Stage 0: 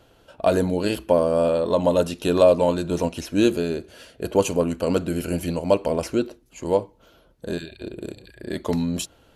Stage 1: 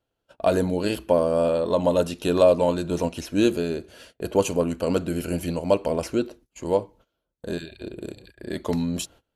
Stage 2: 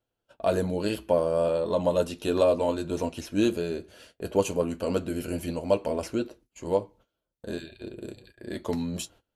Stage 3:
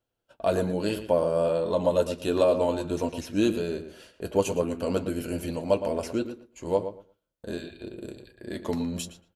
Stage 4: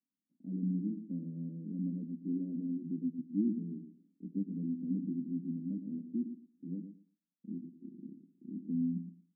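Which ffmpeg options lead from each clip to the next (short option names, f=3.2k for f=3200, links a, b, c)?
-af "agate=range=-23dB:threshold=-46dB:ratio=16:detection=peak,volume=-1.5dB"
-af "flanger=delay=8.4:depth=1.7:regen=-50:speed=0.37:shape=sinusoidal"
-filter_complex "[0:a]asplit=2[a][b];[b]adelay=115,lowpass=f=2.9k:p=1,volume=-10dB,asplit=2[c][d];[d]adelay=115,lowpass=f=2.9k:p=1,volume=0.18,asplit=2[e][f];[f]adelay=115,lowpass=f=2.9k:p=1,volume=0.18[g];[a][c][e][g]amix=inputs=4:normalize=0"
-af "asuperpass=centerf=220:order=8:qfactor=1.7,volume=-2dB"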